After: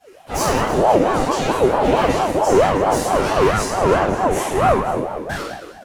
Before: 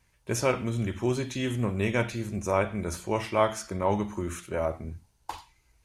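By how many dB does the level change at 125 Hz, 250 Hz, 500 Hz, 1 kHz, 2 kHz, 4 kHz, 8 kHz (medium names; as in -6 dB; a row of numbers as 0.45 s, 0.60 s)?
+5.0 dB, +9.5 dB, +13.0 dB, +16.0 dB, +10.5 dB, +11.5 dB, +10.5 dB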